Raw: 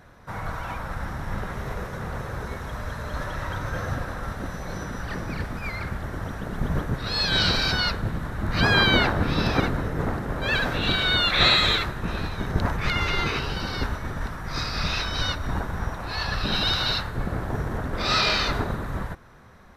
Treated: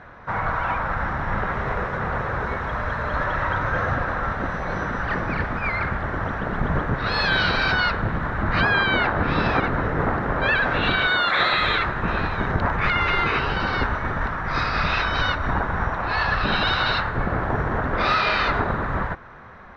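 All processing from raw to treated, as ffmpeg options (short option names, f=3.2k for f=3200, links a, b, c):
-filter_complex "[0:a]asettb=1/sr,asplit=3[a][b][c];[a]atrim=end=11.074[d];[b]atrim=start=11.07:end=11.53,asetpts=PTS-STARTPTS,afade=t=in:d=0.004:c=qsin,afade=t=out:st=0.456:d=0.004:c=qsin,highpass=f=280:p=1,equalizer=f=2.6k:t=o:w=0.31:g=-9,aeval=exprs='val(0)+0.00355*sin(2*PI*7300*n/s)':c=same[e];[c]atrim=start=11.526[f];[d][e]acrossfade=d=0.004:c1=hsin:c2=qsin[g];[g][f]acrossfade=d=0.004:c1=qsin:c2=hsin,lowpass=1.7k,tiltshelf=f=720:g=-6,acompressor=threshold=-26dB:ratio=6,volume=9dB"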